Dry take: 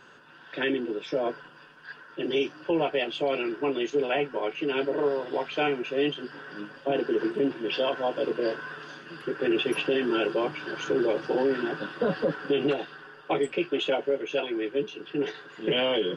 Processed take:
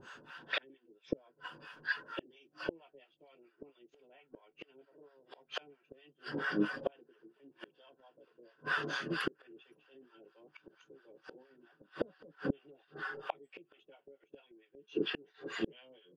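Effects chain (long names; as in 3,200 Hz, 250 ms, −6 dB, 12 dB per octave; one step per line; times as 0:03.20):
noise reduction from a noise print of the clip's start 6 dB
gate with flip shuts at −25 dBFS, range −39 dB
two-band tremolo in antiphase 4.4 Hz, depth 100%, crossover 660 Hz
level +10 dB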